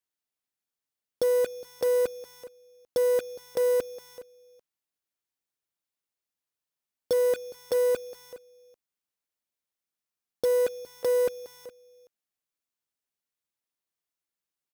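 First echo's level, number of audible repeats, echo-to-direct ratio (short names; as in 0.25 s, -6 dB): -17.0 dB, 1, -17.0 dB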